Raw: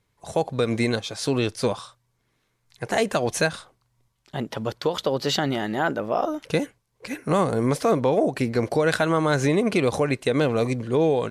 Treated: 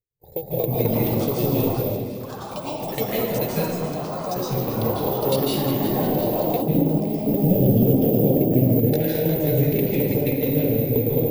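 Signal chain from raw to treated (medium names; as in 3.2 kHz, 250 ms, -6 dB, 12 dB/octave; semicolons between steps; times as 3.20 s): local Wiener filter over 15 samples; Butterworth band-stop 1.2 kHz, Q 0.73; gate with hold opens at -59 dBFS; tremolo saw down 9.4 Hz, depth 90%; compression, threshold -26 dBFS, peak gain reduction 7 dB; thinning echo 356 ms, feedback 66%, high-pass 460 Hz, level -11 dB; careless resampling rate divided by 3×, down none, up zero stuff; treble shelf 5 kHz -9.5 dB; reverberation RT60 1.4 s, pre-delay 143 ms, DRR -5 dB; ever faster or slower copies 327 ms, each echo +5 st, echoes 3, each echo -6 dB; 6.62–8.93 s: graphic EQ 125/250/1000/2000/4000/8000 Hz +4/+5/-7/-6/-5/-7 dB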